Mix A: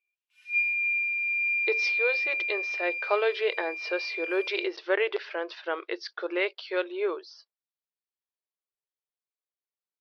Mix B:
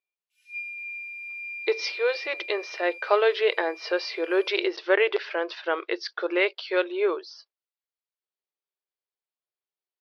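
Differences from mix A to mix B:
speech +4.5 dB; background: add differentiator

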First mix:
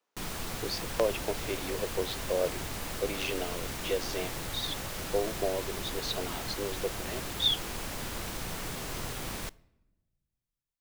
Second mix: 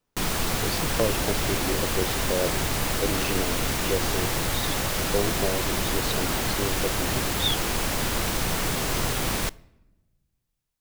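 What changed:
speech: remove HPF 450 Hz 12 dB/oct; background +11.0 dB

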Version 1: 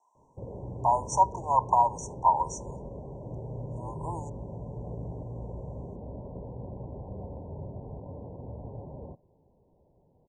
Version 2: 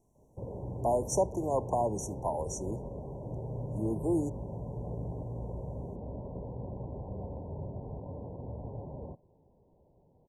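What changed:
speech: remove resonant high-pass 960 Hz, resonance Q 10; master: remove steep low-pass 8600 Hz 48 dB/oct

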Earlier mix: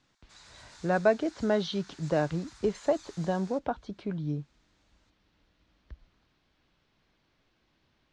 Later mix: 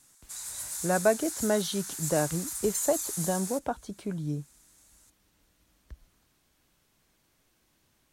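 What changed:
background +4.5 dB; master: remove LPF 4600 Hz 24 dB/oct

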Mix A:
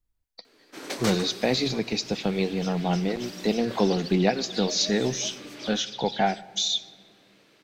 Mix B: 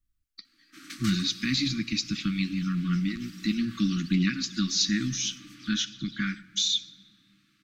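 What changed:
first sound -6.5 dB; second sound -10.0 dB; master: add brick-wall FIR band-stop 340–1100 Hz

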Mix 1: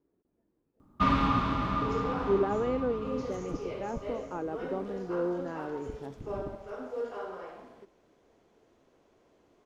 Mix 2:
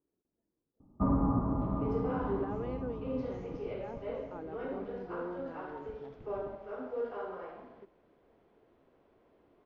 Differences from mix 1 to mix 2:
speech -9.5 dB; first sound: add inverse Chebyshev low-pass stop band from 4800 Hz, stop band 80 dB; second sound: add air absorption 300 m

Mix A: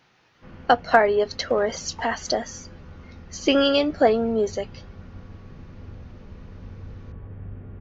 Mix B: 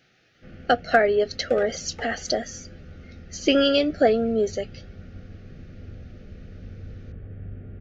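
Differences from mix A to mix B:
second sound +10.5 dB; master: add Butterworth band-stop 980 Hz, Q 1.7

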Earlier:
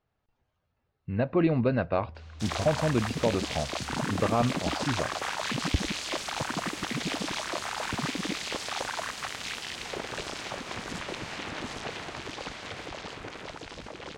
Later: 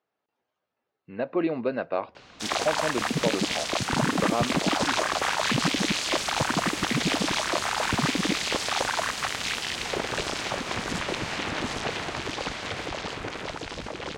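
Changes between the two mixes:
speech: add Chebyshev high-pass 340 Hz, order 2; background +6.5 dB

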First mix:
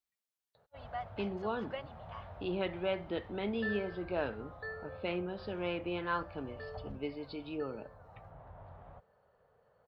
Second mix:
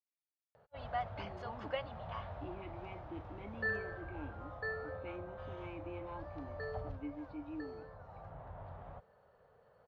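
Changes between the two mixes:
speech: add vowel filter u; background +3.0 dB

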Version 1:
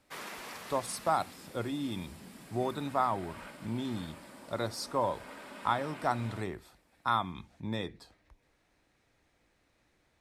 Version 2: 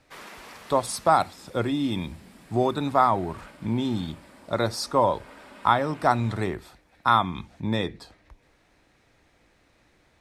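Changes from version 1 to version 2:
speech +9.5 dB; master: add high shelf 8300 Hz -5 dB

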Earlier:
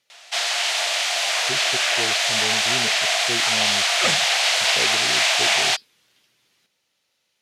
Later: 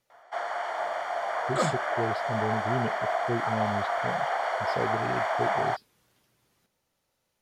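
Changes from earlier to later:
first sound: add polynomial smoothing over 41 samples; second sound: entry -2.45 s; master: remove weighting filter D

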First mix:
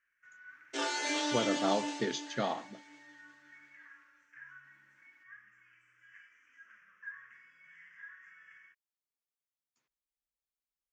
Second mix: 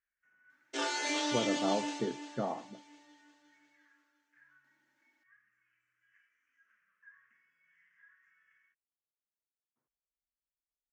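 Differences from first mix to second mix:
speech: add Gaussian blur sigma 6.6 samples; first sound -10.5 dB; reverb: off

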